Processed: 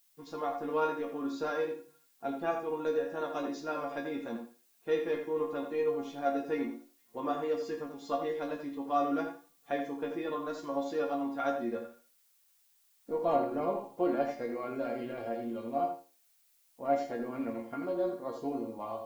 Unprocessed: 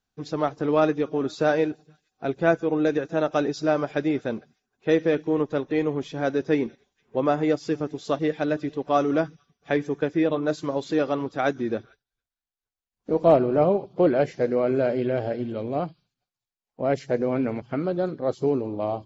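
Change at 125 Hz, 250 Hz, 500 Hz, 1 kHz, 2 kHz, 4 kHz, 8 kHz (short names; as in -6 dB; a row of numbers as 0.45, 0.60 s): -20.0 dB, -11.0 dB, -10.0 dB, -5.5 dB, -11.0 dB, -10.0 dB, n/a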